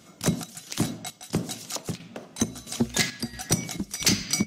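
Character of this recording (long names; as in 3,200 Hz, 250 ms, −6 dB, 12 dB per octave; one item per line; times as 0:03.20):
chopped level 1.5 Hz, depth 60%, duty 65%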